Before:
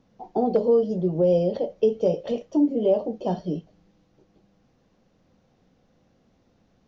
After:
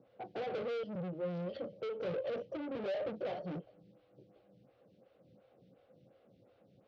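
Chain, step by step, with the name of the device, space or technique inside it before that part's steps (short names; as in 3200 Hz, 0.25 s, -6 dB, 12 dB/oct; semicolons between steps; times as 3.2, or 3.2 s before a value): 0.83–1.73 band shelf 620 Hz -15.5 dB; vibe pedal into a guitar amplifier (photocell phaser 2.8 Hz; tube stage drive 40 dB, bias 0.35; speaker cabinet 110–4100 Hz, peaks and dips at 120 Hz +8 dB, 240 Hz -5 dB, 540 Hz +8 dB, 960 Hz -8 dB, 1800 Hz -5 dB); gain +1.5 dB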